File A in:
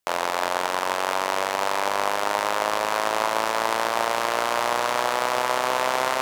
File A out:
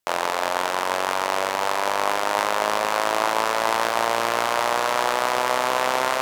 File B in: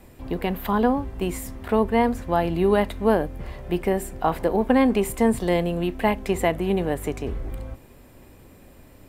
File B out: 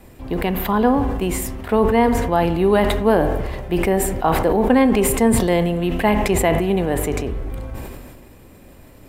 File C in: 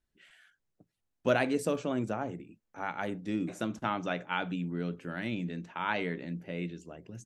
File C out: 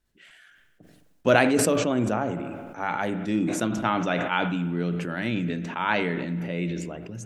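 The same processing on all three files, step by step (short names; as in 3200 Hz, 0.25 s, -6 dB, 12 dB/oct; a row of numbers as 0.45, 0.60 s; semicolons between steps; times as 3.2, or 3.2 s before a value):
short-mantissa float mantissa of 8-bit; vibrato 9.7 Hz 6.8 cents; spring tank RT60 1.2 s, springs 43/52 ms, chirp 60 ms, DRR 13 dB; sustainer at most 32 dB/s; normalise peaks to -3 dBFS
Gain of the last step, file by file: 0.0, +3.0, +6.5 dB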